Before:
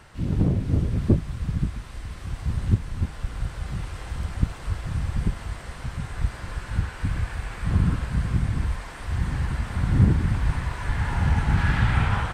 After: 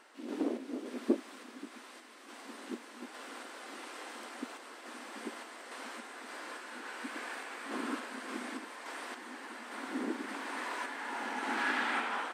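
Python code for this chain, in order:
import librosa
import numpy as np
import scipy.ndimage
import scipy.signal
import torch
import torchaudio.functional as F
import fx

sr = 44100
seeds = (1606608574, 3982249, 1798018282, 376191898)

y = fx.tremolo_random(x, sr, seeds[0], hz=3.5, depth_pct=55)
y = fx.brickwall_highpass(y, sr, low_hz=230.0)
y = y * 10.0 ** (-1.5 / 20.0)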